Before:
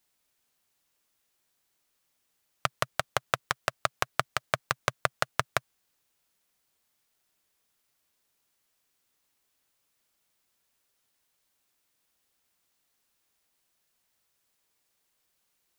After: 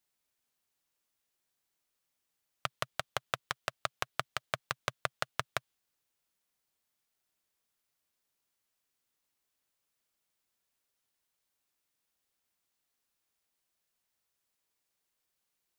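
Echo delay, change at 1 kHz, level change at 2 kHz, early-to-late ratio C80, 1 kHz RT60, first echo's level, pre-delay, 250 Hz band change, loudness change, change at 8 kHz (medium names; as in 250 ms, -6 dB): no echo, -7.5 dB, -6.5 dB, no reverb, no reverb, no echo, no reverb, -7.5 dB, -6.5 dB, -7.0 dB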